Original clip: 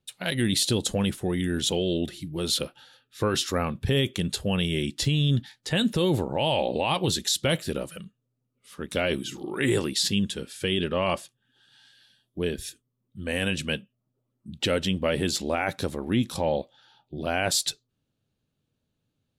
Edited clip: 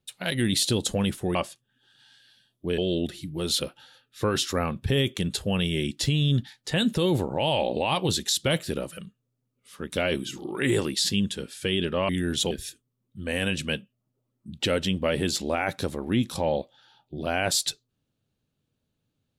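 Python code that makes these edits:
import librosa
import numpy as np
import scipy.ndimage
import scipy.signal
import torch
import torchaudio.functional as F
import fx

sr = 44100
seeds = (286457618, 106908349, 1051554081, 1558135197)

y = fx.edit(x, sr, fx.swap(start_s=1.35, length_s=0.42, other_s=11.08, other_length_s=1.43), tone=tone)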